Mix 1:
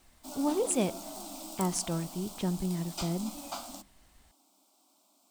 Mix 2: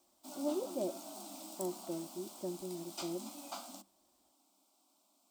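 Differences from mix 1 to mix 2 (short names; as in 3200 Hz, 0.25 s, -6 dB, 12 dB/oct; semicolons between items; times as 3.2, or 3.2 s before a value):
speech: add double band-pass 450 Hz, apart 0.7 oct; background -5.5 dB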